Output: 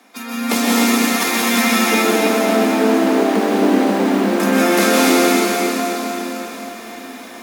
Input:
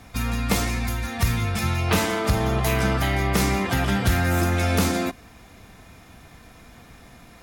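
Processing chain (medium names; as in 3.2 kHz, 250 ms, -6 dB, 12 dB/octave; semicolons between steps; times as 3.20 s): 1.78–4.40 s: median filter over 41 samples; steep high-pass 210 Hz 96 dB/octave; level rider gain up to 7.5 dB; plate-style reverb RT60 4.1 s, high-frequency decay 0.95×, pre-delay 110 ms, DRR -6 dB; bit-crushed delay 264 ms, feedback 55%, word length 7-bit, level -7 dB; trim -1 dB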